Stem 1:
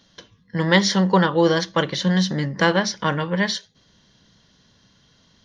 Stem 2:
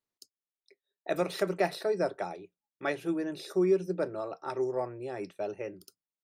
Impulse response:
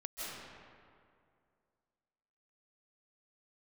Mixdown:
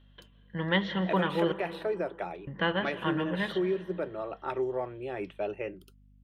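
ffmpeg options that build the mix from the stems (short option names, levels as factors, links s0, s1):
-filter_complex "[0:a]lowpass=3100,bandreject=f=2200:w=11,volume=0.251,asplit=3[s0][s1][s2];[s0]atrim=end=1.52,asetpts=PTS-STARTPTS,afade=t=out:st=1.516:d=0.004:c=hsin[s3];[s1]atrim=start=1.52:end=2.47,asetpts=PTS-STARTPTS,volume=0[s4];[s2]atrim=start=2.47,asetpts=PTS-STARTPTS,afade=t=in:d=0.004:c=hsin[s5];[s3][s4][s5]concat=n=3:v=0:a=1,asplit=2[s6][s7];[s7]volume=0.251[s8];[1:a]aeval=exprs='val(0)+0.00112*(sin(2*PI*50*n/s)+sin(2*PI*2*50*n/s)/2+sin(2*PI*3*50*n/s)/3+sin(2*PI*4*50*n/s)/4+sin(2*PI*5*50*n/s)/5)':c=same,alimiter=limit=0.0631:level=0:latency=1:release=386,volume=1.19[s9];[2:a]atrim=start_sample=2205[s10];[s8][s10]afir=irnorm=-1:irlink=0[s11];[s6][s9][s11]amix=inputs=3:normalize=0,highshelf=f=4000:t=q:w=3:g=-9"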